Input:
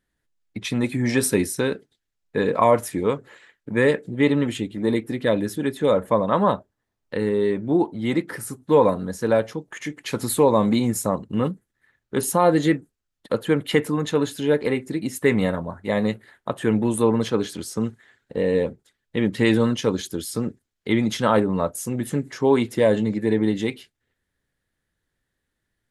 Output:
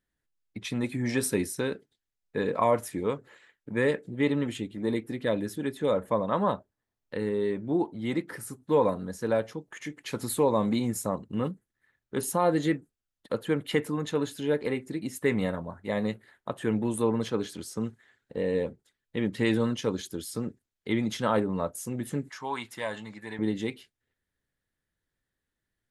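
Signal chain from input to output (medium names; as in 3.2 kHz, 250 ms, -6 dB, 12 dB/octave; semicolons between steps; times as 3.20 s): 22.29–23.39 s: resonant low shelf 650 Hz -12 dB, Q 1.5; trim -7 dB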